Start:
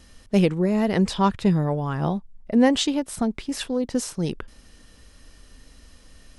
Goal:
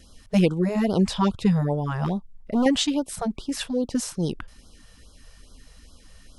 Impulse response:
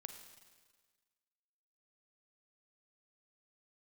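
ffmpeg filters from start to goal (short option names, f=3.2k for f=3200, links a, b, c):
-filter_complex "[0:a]asettb=1/sr,asplit=3[a][b][c];[a]atrim=end=2.044[d];[b]atrim=start=2.04:end=2.66,asetpts=PTS-STARTPTS,afade=t=in:d=0.004:c=qsin,afade=t=out:st=0.616:d=0.004:c=qsin,volume=18.5dB,asoftclip=hard,volume=-18.5dB[e];[c]atrim=start=2.656[f];[d][e]acrossfade=d=0.004:c1=hsin:c2=qsin[g];[g][f]acrossfade=d=0.004:c1=qsin:c2=hsin,afftfilt=real='re*(1-between(b*sr/1024,260*pow(2200/260,0.5+0.5*sin(2*PI*2.4*pts/sr))/1.41,260*pow(2200/260,0.5+0.5*sin(2*PI*2.4*pts/sr))*1.41))':imag='im*(1-between(b*sr/1024,260*pow(2200/260,0.5+0.5*sin(2*PI*2.4*pts/sr))/1.41,260*pow(2200/260,0.5+0.5*sin(2*PI*2.4*pts/sr))*1.41))':win_size=1024:overlap=0.75"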